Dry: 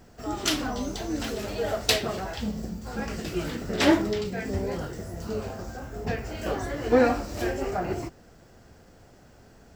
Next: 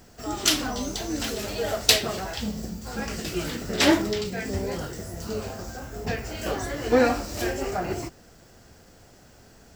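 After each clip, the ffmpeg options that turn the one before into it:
-af "highshelf=f=2.8k:g=8"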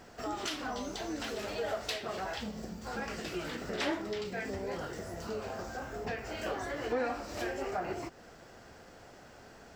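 -filter_complex "[0:a]acompressor=threshold=-37dB:ratio=2.5,asplit=2[a][b];[b]highpass=f=720:p=1,volume=12dB,asoftclip=type=tanh:threshold=-14dB[c];[a][c]amix=inputs=2:normalize=0,lowpass=f=1.6k:p=1,volume=-6dB,volume=-1.5dB"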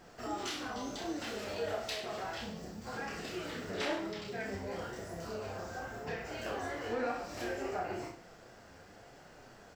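-af "flanger=delay=5.4:depth=6.5:regen=50:speed=0.97:shape=triangular,aecho=1:1:30|63|99.3|139.2|183.2:0.631|0.398|0.251|0.158|0.1"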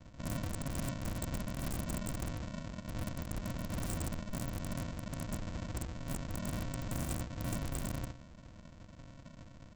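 -af "flanger=delay=6.4:depth=6.1:regen=54:speed=0.75:shape=sinusoidal,aresample=16000,acrusher=samples=39:mix=1:aa=0.000001,aresample=44100,aeval=exprs='(mod(84.1*val(0)+1,2)-1)/84.1':c=same,volume=7dB"

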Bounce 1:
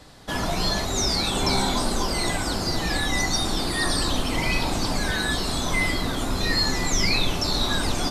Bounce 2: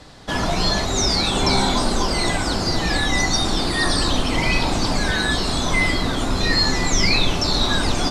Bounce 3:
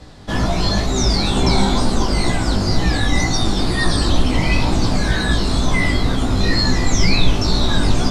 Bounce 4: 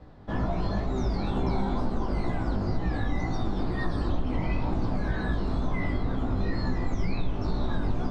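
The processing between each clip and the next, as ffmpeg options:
-af "lowpass=7.9k,volume=4.5dB"
-af "lowshelf=f=290:g=9,flanger=delay=15.5:depth=5:speed=2.1,volume=1.5dB"
-af "lowpass=1.2k,acompressor=threshold=-14dB:ratio=3,crystalizer=i=3:c=0,volume=-8.5dB"

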